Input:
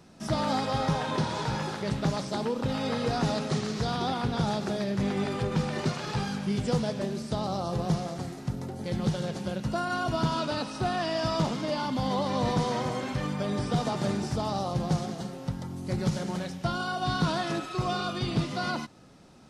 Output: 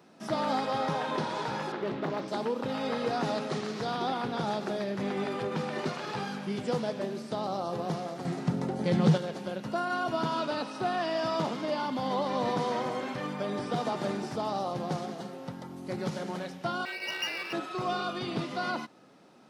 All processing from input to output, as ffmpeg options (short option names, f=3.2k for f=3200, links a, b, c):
-filter_complex "[0:a]asettb=1/sr,asplit=3[a][b][c];[a]atrim=end=1.724[d];[b]atrim=start=1.72:end=2.28,asetpts=PTS-STARTPTS,afade=t=in:d=0.004:c=qsin,afade=t=out:st=0.556:d=0.004:c=qsin,lowpass=3.6k,equalizer=f=350:t=o:w=0.45:g=9.5,volume=24.5dB,asoftclip=hard,volume=-24.5dB[e];[c]atrim=start=2.276[f];[d][e]acrossfade=d=0.004:c1=hsin:c2=qsin[g];[g][f]acrossfade=d=0.004:c1=qsin:c2=hsin,asettb=1/sr,asplit=3[h][i][j];[h]atrim=end=8.254[k];[i]atrim=start=8.25:end=9.18,asetpts=PTS-STARTPTS,afade=t=in:d=0.004:c=qsin,afade=t=out:st=0.926:d=0.004:c=qsin,equalizer=f=160:t=o:w=0.49:g=10.5,acontrast=65,lowpass=f=10k:w=0.5412,lowpass=f=10k:w=1.3066[l];[j]atrim=start=9.176[m];[k][l]acrossfade=d=0.004:c1=hsin:c2=qsin[n];[n][m]acrossfade=d=0.004:c1=qsin:c2=hsin,asettb=1/sr,asplit=3[o][p][q];[o]atrim=end=16.854[r];[p]atrim=start=16.85:end=17.53,asetpts=PTS-STARTPTS,afade=t=in:d=0.004:c=qsin,afade=t=out:st=0.676:d=0.004:c=qsin,lowpass=f=2.6k:t=q:w=0.5098,lowpass=f=2.6k:t=q:w=0.6013,lowpass=f=2.6k:t=q:w=0.9,lowpass=f=2.6k:t=q:w=2.563,afreqshift=-3000,aeval=exprs='max(val(0),0)':c=same[s];[q]atrim=start=17.526[t];[r][s]acrossfade=d=0.004:c1=hsin:c2=qsin[u];[u][t]acrossfade=d=0.004:c1=qsin:c2=hsin,highpass=250,equalizer=f=7.6k:w=0.61:g=-7.5"